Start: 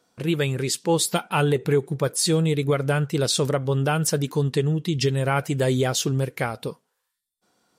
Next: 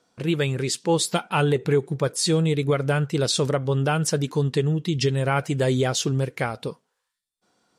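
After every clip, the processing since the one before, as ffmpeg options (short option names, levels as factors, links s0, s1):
-af "lowpass=9000"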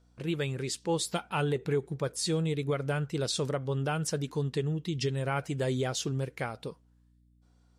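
-af "aeval=exprs='val(0)+0.002*(sin(2*PI*60*n/s)+sin(2*PI*2*60*n/s)/2+sin(2*PI*3*60*n/s)/3+sin(2*PI*4*60*n/s)/4+sin(2*PI*5*60*n/s)/5)':c=same,volume=0.376"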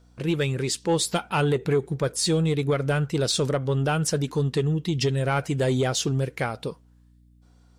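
-af "asoftclip=type=tanh:threshold=0.0891,volume=2.51"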